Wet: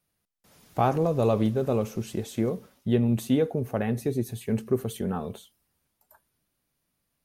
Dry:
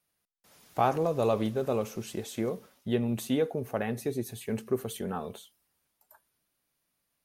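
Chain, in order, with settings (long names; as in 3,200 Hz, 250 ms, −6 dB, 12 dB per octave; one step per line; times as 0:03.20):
low-shelf EQ 300 Hz +9.5 dB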